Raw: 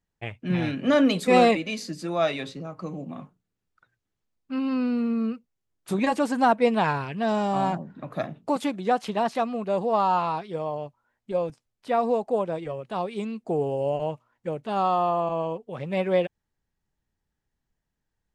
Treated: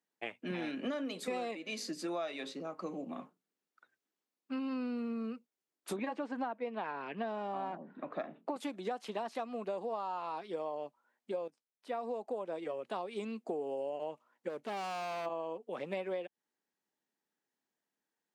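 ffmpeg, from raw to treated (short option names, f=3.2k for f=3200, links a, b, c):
-filter_complex "[0:a]asettb=1/sr,asplit=3[a][b][c];[a]atrim=end=5.964[d];[b]atrim=start=5.96:end=8.56,asetpts=PTS-STARTPTS,afade=t=in:d=0.004:c=qsin,afade=t=out:st=2.596:d=0.004:c=qsin,highpass=110,lowpass=2.9k[e];[c]atrim=start=8.556[f];[d][e]acrossfade=d=0.004:c1=hsin:c2=qsin[g];[g][f]acrossfade=d=0.004:c1=qsin:c2=hsin,asplit=3[h][i][j];[h]afade=t=out:st=14.48:d=0.02[k];[i]asoftclip=type=hard:threshold=-30.5dB,afade=t=in:st=14.48:d=0.02,afade=t=out:st=15.25:d=0.02[l];[j]afade=t=in:st=15.25:d=0.02[m];[k][l][m]amix=inputs=3:normalize=0,asplit=2[n][o];[n]atrim=end=11.48,asetpts=PTS-STARTPTS,afade=t=out:st=11.476:d=0.004:c=hsin:silence=0.188365[p];[o]atrim=start=11.48,asetpts=PTS-STARTPTS,afade=t=in:d=1.22:silence=0.188365[q];[p][q]concat=n=2:v=0:a=1,highpass=f=240:w=0.5412,highpass=f=240:w=1.3066,acompressor=threshold=-31dB:ratio=16,volume=-3dB"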